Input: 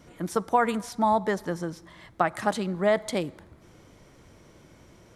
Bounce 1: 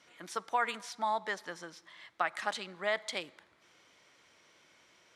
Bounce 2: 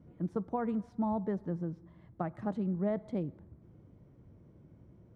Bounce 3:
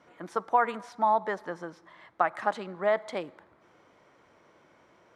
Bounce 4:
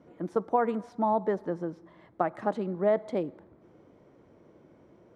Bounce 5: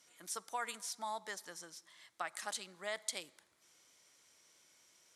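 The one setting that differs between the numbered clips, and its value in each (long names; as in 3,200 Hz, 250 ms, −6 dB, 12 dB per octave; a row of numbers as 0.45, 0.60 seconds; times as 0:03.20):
resonant band-pass, frequency: 3,000, 120, 1,100, 400, 7,900 Hertz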